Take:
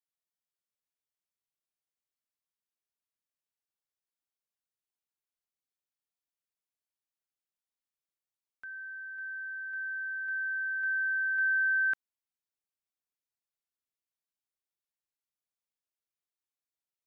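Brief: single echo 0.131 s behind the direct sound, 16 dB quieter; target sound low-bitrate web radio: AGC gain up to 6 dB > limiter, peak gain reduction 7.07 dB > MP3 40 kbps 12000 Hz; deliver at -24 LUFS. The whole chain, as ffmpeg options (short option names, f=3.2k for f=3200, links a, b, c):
-af "aecho=1:1:131:0.158,dynaudnorm=m=6dB,alimiter=level_in=4.5dB:limit=-24dB:level=0:latency=1,volume=-4.5dB,volume=8.5dB" -ar 12000 -c:a libmp3lame -b:a 40k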